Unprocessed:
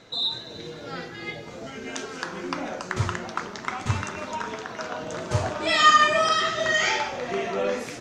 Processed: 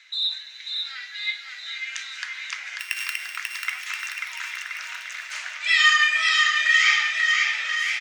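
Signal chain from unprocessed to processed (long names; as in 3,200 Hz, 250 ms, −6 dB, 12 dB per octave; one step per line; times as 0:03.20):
0:02.79–0:03.37: samples sorted by size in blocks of 16 samples
four-pole ladder high-pass 1,800 Hz, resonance 55%
bouncing-ball delay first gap 540 ms, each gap 0.9×, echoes 5
level +9 dB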